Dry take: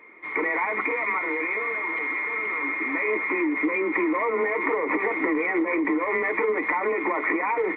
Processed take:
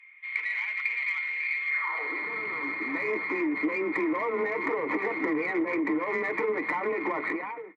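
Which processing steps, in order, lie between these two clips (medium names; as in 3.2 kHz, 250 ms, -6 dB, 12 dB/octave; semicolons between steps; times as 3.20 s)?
fade out at the end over 0.57 s; Chebyshev shaper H 6 -33 dB, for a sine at -11 dBFS; high-pass sweep 2.6 kHz -> 140 Hz, 1.67–2.35 s; trim -5 dB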